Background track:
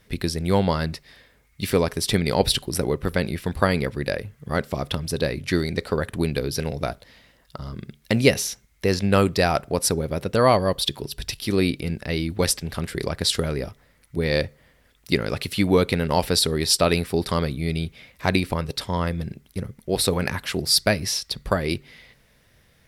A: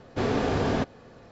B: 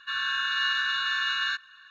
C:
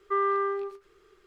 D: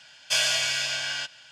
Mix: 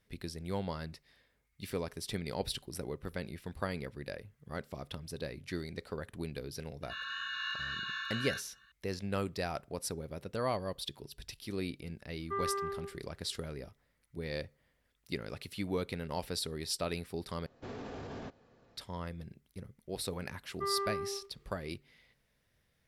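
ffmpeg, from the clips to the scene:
-filter_complex "[3:a]asplit=2[a][b];[0:a]volume=-16.5dB[c];[2:a]flanger=delay=16:depth=4.9:speed=2[d];[1:a]alimiter=limit=-21dB:level=0:latency=1:release=31[e];[b]equalizer=f=1.5k:t=o:w=0.37:g=-6.5[f];[c]asplit=2[g][h];[g]atrim=end=17.464[i];[e]atrim=end=1.31,asetpts=PTS-STARTPTS,volume=-14.5dB[j];[h]atrim=start=18.766[k];[d]atrim=end=1.9,asetpts=PTS-STARTPTS,volume=-8.5dB,afade=t=in:d=0.004:c=hsin,afade=t=out:st=1.896:d=0.004:c=hsin,adelay=300762S[l];[a]atrim=end=1.26,asetpts=PTS-STARTPTS,volume=-9.5dB,afade=t=in:d=0.004:c=hsin,afade=t=out:st=1.256:d=0.004:c=hsin,adelay=538020S[m];[f]atrim=end=1.26,asetpts=PTS-STARTPTS,volume=-8.5dB,afade=t=in:d=0.004:c=hsin,afade=t=out:st=1.256:d=0.004:c=hsin,adelay=20500[n];[i][j]acrossfade=d=0.004:c1=hsin:c2=hsin[o];[o][k]acrossfade=d=0.004:c1=hsin:c2=hsin[p];[p][l][m][n]amix=inputs=4:normalize=0"

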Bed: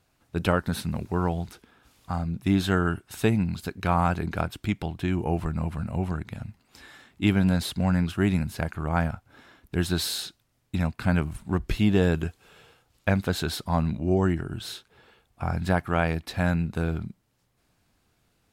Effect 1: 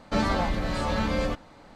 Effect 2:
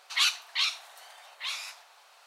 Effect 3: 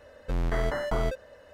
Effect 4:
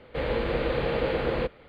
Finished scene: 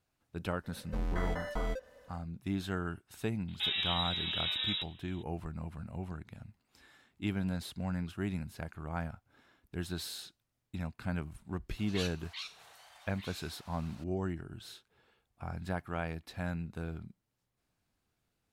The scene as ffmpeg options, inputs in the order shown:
-filter_complex "[0:a]volume=-12.5dB[a];[3:a]aecho=1:1:4:0.54[b];[1:a]lowpass=f=3.3k:t=q:w=0.5098,lowpass=f=3.3k:t=q:w=0.6013,lowpass=f=3.3k:t=q:w=0.9,lowpass=f=3.3k:t=q:w=2.563,afreqshift=-3900[c];[2:a]acompressor=mode=upward:threshold=-31dB:ratio=4:attack=0.27:release=180:knee=2.83:detection=peak[d];[b]atrim=end=1.53,asetpts=PTS-STARTPTS,volume=-8.5dB,afade=t=in:d=0.004:c=hsin,afade=t=out:st=1.526:d=0.004:c=hsin,adelay=640[e];[c]atrim=end=1.75,asetpts=PTS-STARTPTS,volume=-9dB,afade=t=in:d=0.004:c=hsin,afade=t=out:st=1.746:d=0.004:c=hsin,adelay=3480[f];[d]atrim=end=2.26,asetpts=PTS-STARTPTS,volume=-15.5dB,afade=t=in:d=0.004:c=hsin,afade=t=out:st=2.256:d=0.004:c=hsin,adelay=519498S[g];[a][e][f][g]amix=inputs=4:normalize=0"

